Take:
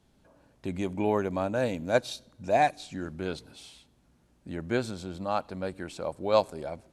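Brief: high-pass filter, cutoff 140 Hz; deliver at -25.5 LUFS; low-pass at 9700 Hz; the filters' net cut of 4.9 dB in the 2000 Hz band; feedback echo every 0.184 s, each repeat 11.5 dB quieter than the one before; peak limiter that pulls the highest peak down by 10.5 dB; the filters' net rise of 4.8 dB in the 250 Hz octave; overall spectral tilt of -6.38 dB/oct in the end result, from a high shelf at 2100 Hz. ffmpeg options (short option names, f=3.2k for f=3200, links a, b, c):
-af "highpass=140,lowpass=9.7k,equalizer=f=250:t=o:g=7,equalizer=f=2k:t=o:g=-4,highshelf=f=2.1k:g=-5,alimiter=limit=-21dB:level=0:latency=1,aecho=1:1:184|368|552:0.266|0.0718|0.0194,volume=7.5dB"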